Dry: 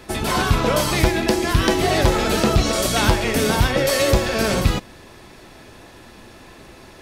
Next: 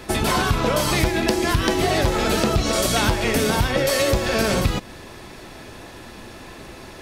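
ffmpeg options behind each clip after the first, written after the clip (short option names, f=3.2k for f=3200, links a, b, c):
-af "acompressor=threshold=-21dB:ratio=4,volume=4dB"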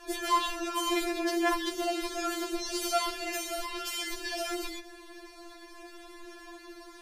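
-af "afftfilt=real='re*4*eq(mod(b,16),0)':imag='im*4*eq(mod(b,16),0)':win_size=2048:overlap=0.75,volume=-7.5dB"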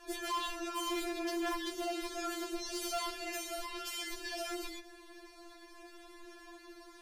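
-af "asoftclip=type=hard:threshold=-26.5dB,volume=-5.5dB"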